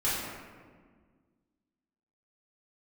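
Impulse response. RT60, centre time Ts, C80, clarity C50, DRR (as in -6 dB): 1.6 s, 0.102 s, 1.0 dB, -1.0 dB, -10.5 dB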